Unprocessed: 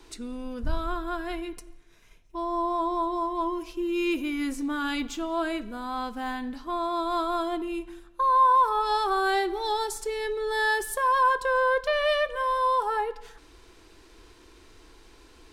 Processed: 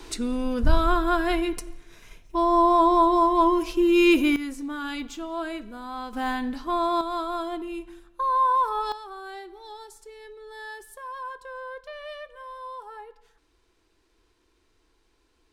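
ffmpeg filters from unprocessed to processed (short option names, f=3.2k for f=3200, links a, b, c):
-af "asetnsamples=n=441:p=0,asendcmd='4.36 volume volume -3dB;6.13 volume volume 4.5dB;7.01 volume volume -2dB;8.92 volume volume -14.5dB',volume=9dB"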